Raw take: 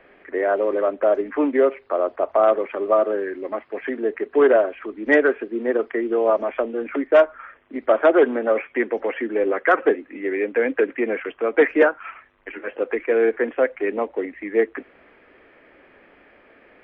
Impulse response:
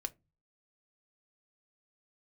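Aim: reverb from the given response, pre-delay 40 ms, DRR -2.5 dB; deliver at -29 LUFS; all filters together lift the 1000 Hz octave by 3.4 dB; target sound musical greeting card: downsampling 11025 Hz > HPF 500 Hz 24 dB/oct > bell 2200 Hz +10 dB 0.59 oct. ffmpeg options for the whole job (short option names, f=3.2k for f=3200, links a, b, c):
-filter_complex "[0:a]equalizer=f=1k:t=o:g=4,asplit=2[a][b];[1:a]atrim=start_sample=2205,adelay=40[c];[b][c]afir=irnorm=-1:irlink=0,volume=3.5dB[d];[a][d]amix=inputs=2:normalize=0,aresample=11025,aresample=44100,highpass=f=500:w=0.5412,highpass=f=500:w=1.3066,equalizer=f=2.2k:t=o:w=0.59:g=10,volume=-12.5dB"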